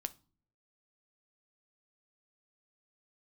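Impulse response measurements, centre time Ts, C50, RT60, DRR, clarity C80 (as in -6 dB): 3 ms, 20.5 dB, no single decay rate, 11.0 dB, 28.0 dB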